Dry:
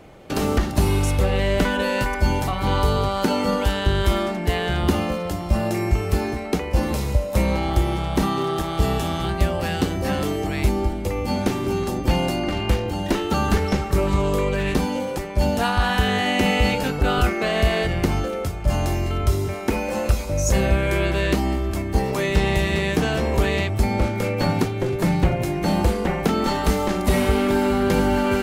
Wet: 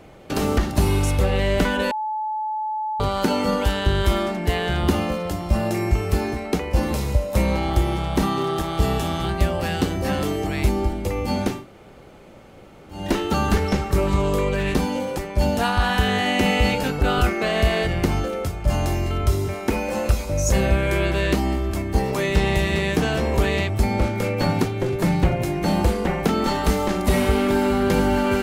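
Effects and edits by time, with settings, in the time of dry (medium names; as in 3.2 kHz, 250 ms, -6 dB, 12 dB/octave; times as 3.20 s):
1.91–3.00 s: bleep 863 Hz -23 dBFS
11.55–12.99 s: room tone, crossfade 0.24 s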